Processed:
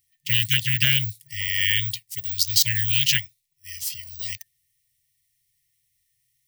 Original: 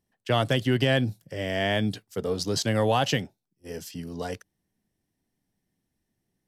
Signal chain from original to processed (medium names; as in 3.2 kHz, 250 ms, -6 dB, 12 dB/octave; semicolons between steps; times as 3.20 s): tilt EQ +2 dB/octave; careless resampling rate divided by 2×, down none, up zero stuff; FFT band-reject 150–1800 Hz; loudspeaker Doppler distortion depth 0.27 ms; trim +5.5 dB